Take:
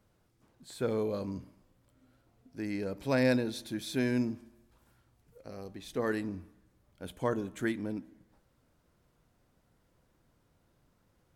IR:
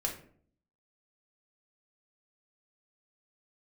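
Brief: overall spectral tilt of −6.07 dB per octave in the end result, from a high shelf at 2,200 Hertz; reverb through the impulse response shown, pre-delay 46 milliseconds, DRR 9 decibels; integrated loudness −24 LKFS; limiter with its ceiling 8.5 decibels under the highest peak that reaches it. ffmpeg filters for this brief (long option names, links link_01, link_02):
-filter_complex "[0:a]highshelf=frequency=2200:gain=-4,alimiter=level_in=1.5dB:limit=-24dB:level=0:latency=1,volume=-1.5dB,asplit=2[link_01][link_02];[1:a]atrim=start_sample=2205,adelay=46[link_03];[link_02][link_03]afir=irnorm=-1:irlink=0,volume=-12.5dB[link_04];[link_01][link_04]amix=inputs=2:normalize=0,volume=13dB"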